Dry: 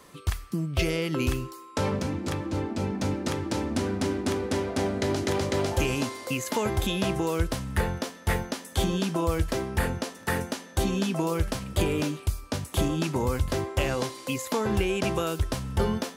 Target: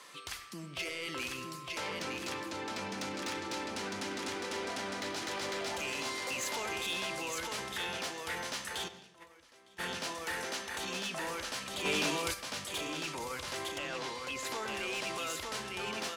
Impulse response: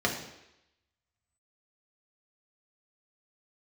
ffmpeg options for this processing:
-filter_complex "[0:a]alimiter=limit=-24dB:level=0:latency=1:release=16,bandpass=frequency=3300:width_type=q:width=0.51:csg=0,aecho=1:1:908:0.596,asoftclip=type=tanh:threshold=-30.5dB,asplit=3[link_01][link_02][link_03];[link_01]afade=type=out:start_time=8.87:duration=0.02[link_04];[link_02]agate=range=-23dB:threshold=-37dB:ratio=16:detection=peak,afade=type=in:start_time=8.87:duration=0.02,afade=type=out:start_time=9.78:duration=0.02[link_05];[link_03]afade=type=in:start_time=9.78:duration=0.02[link_06];[link_04][link_05][link_06]amix=inputs=3:normalize=0,asettb=1/sr,asplit=3[link_07][link_08][link_09];[link_07]atrim=end=13.784[link_10];[link_08]atrim=start=13.78:end=14.45,asetpts=PTS-STARTPTS,afade=type=in:duration=0.004:curve=qsin,afade=type=out:start_time=0.666:duration=0.004:curve=qsin,highshelf=frequency=5900:gain=-11.5[link_11];[link_09]atrim=start=14.446[link_12];[link_10][link_11]acrossfade=duration=0.004:curve1=hsin:curve2=qsin[link_13];[link_13][link_12]acrossfade=duration=0.004:curve1=qsin:curve2=hsin,aeval=exprs='0.075*sin(PI/2*2.82*val(0)/0.075)':channel_layout=same,asplit=2[link_14][link_15];[1:a]atrim=start_sample=2205,adelay=94[link_16];[link_15][link_16]afir=irnorm=-1:irlink=0,volume=-23.5dB[link_17];[link_14][link_17]amix=inputs=2:normalize=0,asplit=3[link_18][link_19][link_20];[link_18]afade=type=out:start_time=11.84:duration=0.02[link_21];[link_19]acontrast=72,afade=type=in:start_time=11.84:duration=0.02,afade=type=out:start_time=12.33:duration=0.02[link_22];[link_20]afade=type=in:start_time=12.33:duration=0.02[link_23];[link_21][link_22][link_23]amix=inputs=3:normalize=0,volume=-8.5dB"

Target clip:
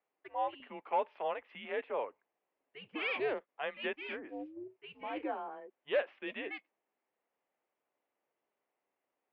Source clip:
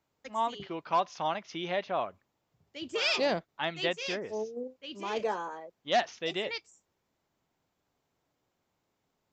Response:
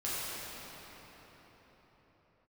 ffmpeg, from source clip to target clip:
-af "highpass=frequency=490:width_type=q:width=0.5412,highpass=frequency=490:width_type=q:width=1.307,lowpass=frequency=2900:width_type=q:width=0.5176,lowpass=frequency=2900:width_type=q:width=0.7071,lowpass=frequency=2900:width_type=q:width=1.932,afreqshift=-140,equalizer=frequency=1400:width_type=o:width=0.31:gain=-3,volume=-4dB"

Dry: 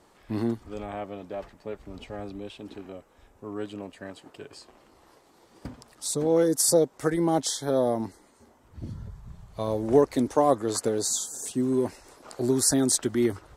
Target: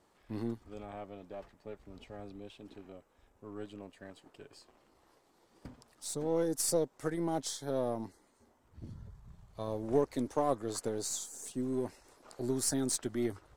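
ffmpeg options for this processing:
ffmpeg -i in.wav -af "aeval=exprs='if(lt(val(0),0),0.708*val(0),val(0))':channel_layout=same,volume=-8.5dB" out.wav

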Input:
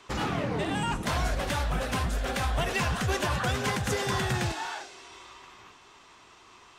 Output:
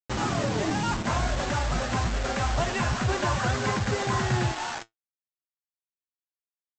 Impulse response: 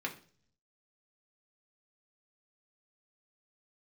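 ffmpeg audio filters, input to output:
-af "lowpass=1900,bandreject=frequency=470:width=12,aresample=16000,acrusher=bits=5:mix=0:aa=0.000001,aresample=44100,flanger=delay=8.1:depth=1.4:regen=62:speed=0.67:shape=triangular,volume=7dB"

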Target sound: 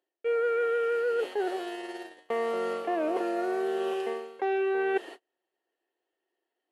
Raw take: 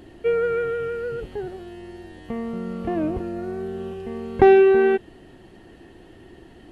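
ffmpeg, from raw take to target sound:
ffmpeg -i in.wav -af "highpass=frequency=430:width=0.5412,highpass=frequency=430:width=1.3066,agate=range=-41dB:threshold=-45dB:ratio=16:detection=peak,areverse,acompressor=threshold=-34dB:ratio=20,areverse,volume=9dB" out.wav

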